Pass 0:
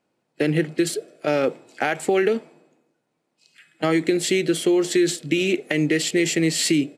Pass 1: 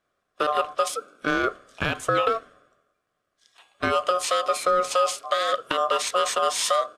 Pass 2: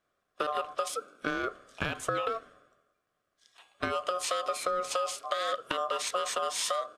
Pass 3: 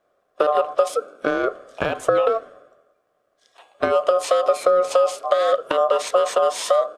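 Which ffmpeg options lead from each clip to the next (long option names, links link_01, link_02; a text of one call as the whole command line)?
ffmpeg -i in.wav -af "aeval=exprs='val(0)*sin(2*PI*900*n/s)':channel_layout=same" out.wav
ffmpeg -i in.wav -af "acompressor=threshold=-24dB:ratio=6,volume=-3dB" out.wav
ffmpeg -i in.wav -af "equalizer=frequency=570:width_type=o:width=1.7:gain=14.5,volume=2.5dB" out.wav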